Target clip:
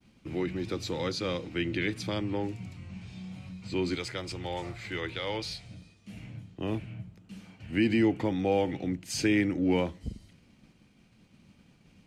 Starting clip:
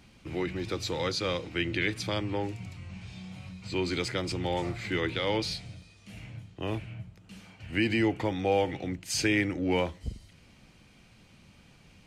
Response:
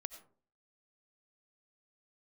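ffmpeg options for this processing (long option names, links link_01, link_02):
-af "agate=range=-33dB:threshold=-52dB:ratio=3:detection=peak,asetnsamples=nb_out_samples=441:pad=0,asendcmd='3.95 equalizer g -4.5;5.71 equalizer g 8',equalizer=frequency=230:width=0.86:gain=6.5,volume=-3.5dB"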